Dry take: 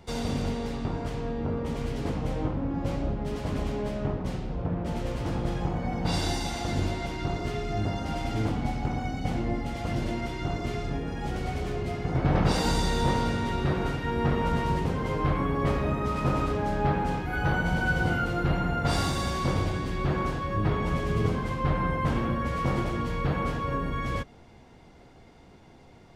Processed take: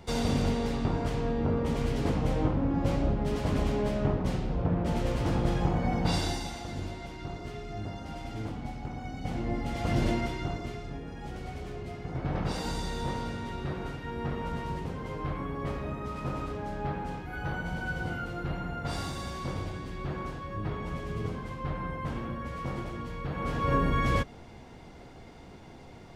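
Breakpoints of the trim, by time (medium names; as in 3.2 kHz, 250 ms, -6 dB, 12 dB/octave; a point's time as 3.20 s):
5.96 s +2 dB
6.68 s -8.5 dB
8.95 s -8.5 dB
10.07 s +3.5 dB
10.80 s -8 dB
23.30 s -8 dB
23.72 s +4 dB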